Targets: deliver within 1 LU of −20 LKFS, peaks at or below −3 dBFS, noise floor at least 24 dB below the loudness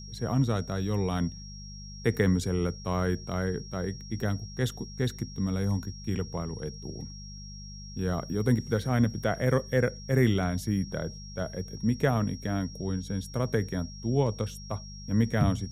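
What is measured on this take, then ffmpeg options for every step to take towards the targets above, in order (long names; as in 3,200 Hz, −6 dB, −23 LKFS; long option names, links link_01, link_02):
mains hum 50 Hz; hum harmonics up to 200 Hz; level of the hum −42 dBFS; interfering tone 5,600 Hz; level of the tone −46 dBFS; integrated loudness −30.0 LKFS; sample peak −11.0 dBFS; target loudness −20.0 LKFS
→ -af "bandreject=frequency=50:width_type=h:width=4,bandreject=frequency=100:width_type=h:width=4,bandreject=frequency=150:width_type=h:width=4,bandreject=frequency=200:width_type=h:width=4"
-af "bandreject=frequency=5600:width=30"
-af "volume=10dB,alimiter=limit=-3dB:level=0:latency=1"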